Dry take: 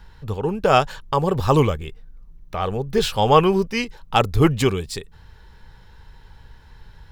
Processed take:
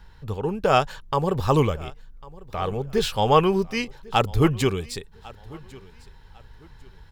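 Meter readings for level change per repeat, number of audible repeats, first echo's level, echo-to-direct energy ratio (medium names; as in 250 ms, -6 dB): -11.0 dB, 2, -22.0 dB, -21.5 dB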